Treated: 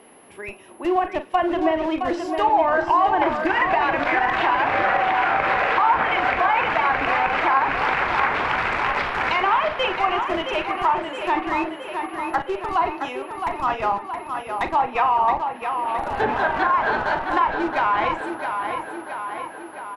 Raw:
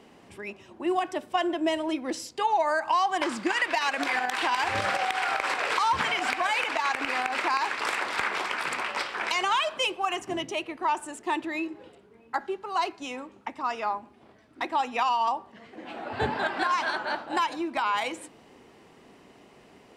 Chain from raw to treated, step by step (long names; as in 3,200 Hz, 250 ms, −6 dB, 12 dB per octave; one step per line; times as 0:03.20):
steady tone 11,000 Hz −47 dBFS
bass and treble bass −11 dB, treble −14 dB
double-tracking delay 41 ms −10 dB
in parallel at −11 dB: comparator with hysteresis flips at −29.5 dBFS
on the sum: treble cut that deepens with the level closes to 1,800 Hz, closed at −21 dBFS
on a send: tape delay 668 ms, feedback 66%, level −5.5 dB, low-pass 5,100 Hz
on the sum: level +5.5 dB